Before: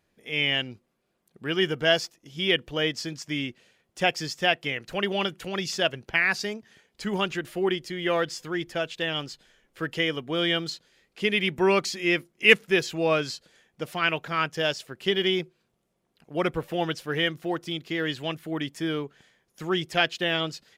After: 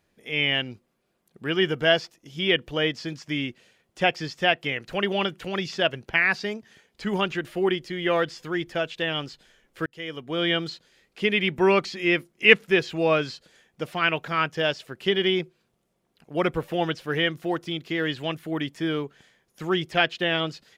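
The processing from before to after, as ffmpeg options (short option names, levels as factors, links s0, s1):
-filter_complex "[0:a]asplit=2[s0][s1];[s0]atrim=end=9.86,asetpts=PTS-STARTPTS,afade=t=out:st=9.856:d=0.004:c=hsin[s2];[s1]atrim=start=9.86,asetpts=PTS-STARTPTS,afade=t=in:d=0.64[s3];[s2][s3]concat=n=2:v=0:a=1,acrossover=split=4300[s4][s5];[s5]acompressor=threshold=0.00224:ratio=4:attack=1:release=60[s6];[s4][s6]amix=inputs=2:normalize=0,volume=1.26"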